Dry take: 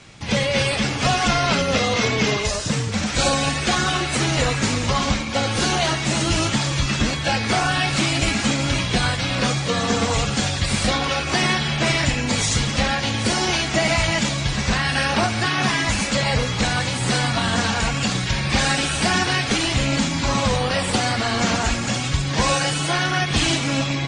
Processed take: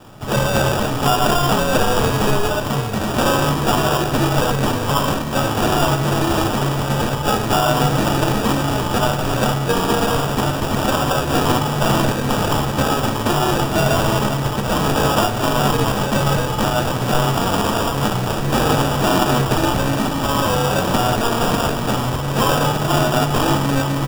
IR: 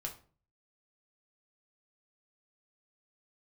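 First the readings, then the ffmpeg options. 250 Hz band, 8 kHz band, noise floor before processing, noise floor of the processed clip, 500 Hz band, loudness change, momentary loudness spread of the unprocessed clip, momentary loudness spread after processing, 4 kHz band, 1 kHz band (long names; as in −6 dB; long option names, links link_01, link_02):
+3.5 dB, −2.0 dB, −25 dBFS, −22 dBFS, +6.0 dB, +2.0 dB, 3 LU, 3 LU, −2.5 dB, +5.5 dB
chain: -filter_complex "[0:a]asplit=2[link_01][link_02];[link_02]adelay=1633,volume=-13dB,highshelf=frequency=4000:gain=-36.7[link_03];[link_01][link_03]amix=inputs=2:normalize=0,acrossover=split=300|3000[link_04][link_05][link_06];[link_04]acompressor=threshold=-29dB:ratio=3[link_07];[link_07][link_05][link_06]amix=inputs=3:normalize=0,acrusher=samples=21:mix=1:aa=0.000001,asplit=2[link_08][link_09];[1:a]atrim=start_sample=2205[link_10];[link_09][link_10]afir=irnorm=-1:irlink=0,volume=0dB[link_11];[link_08][link_11]amix=inputs=2:normalize=0,volume=-1dB"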